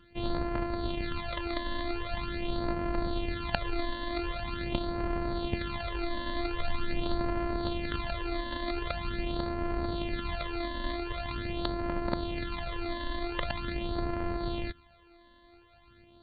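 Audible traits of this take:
a buzz of ramps at a fixed pitch in blocks of 128 samples
phaser sweep stages 12, 0.44 Hz, lowest notch 130–3,600 Hz
AC-3

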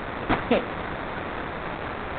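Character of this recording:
a quantiser's noise floor 6 bits, dither triangular
phaser sweep stages 2, 2.1 Hz, lowest notch 660–3,000 Hz
aliases and images of a low sample rate 3,100 Hz, jitter 20%
mu-law

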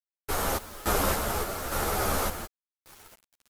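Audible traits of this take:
sample-and-hold tremolo, depth 90%
a quantiser's noise floor 8 bits, dither none
a shimmering, thickened sound

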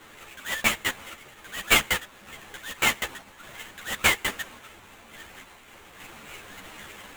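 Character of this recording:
a quantiser's noise floor 8 bits, dither triangular
sample-and-hold tremolo 3.5 Hz
aliases and images of a low sample rate 5,100 Hz, jitter 20%
a shimmering, thickened sound

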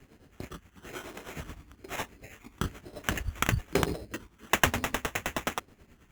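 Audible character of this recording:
tremolo triangle 9.5 Hz, depth 75%
phaser sweep stages 12, 1.1 Hz, lowest notch 560–2,100 Hz
aliases and images of a low sample rate 4,600 Hz, jitter 0%

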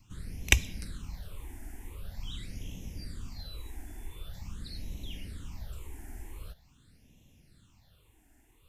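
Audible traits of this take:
phaser sweep stages 8, 0.45 Hz, lowest notch 150–1,400 Hz

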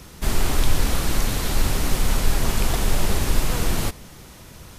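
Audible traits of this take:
background noise floor −44 dBFS
spectral slope −4.0 dB per octave

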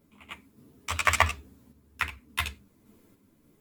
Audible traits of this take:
sample-and-hold tremolo 3.5 Hz
a shimmering, thickened sound

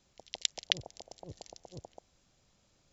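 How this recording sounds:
background noise floor −72 dBFS
spectral slope −0.5 dB per octave

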